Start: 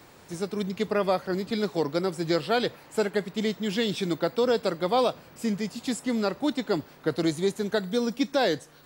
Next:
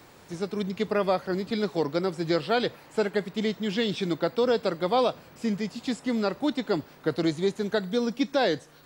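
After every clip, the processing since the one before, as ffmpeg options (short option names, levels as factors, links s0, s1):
-filter_complex "[0:a]acrossover=split=6300[s0][s1];[s1]acompressor=threshold=0.00126:ratio=4:attack=1:release=60[s2];[s0][s2]amix=inputs=2:normalize=0"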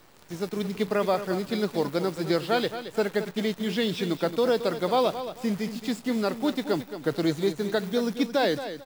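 -filter_complex "[0:a]acrusher=bits=8:dc=4:mix=0:aa=0.000001,asplit=2[s0][s1];[s1]aecho=0:1:222|444|666:0.282|0.0761|0.0205[s2];[s0][s2]amix=inputs=2:normalize=0"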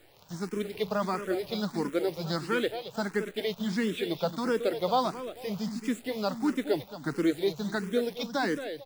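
-filter_complex "[0:a]asplit=2[s0][s1];[s1]afreqshift=1.5[s2];[s0][s2]amix=inputs=2:normalize=1"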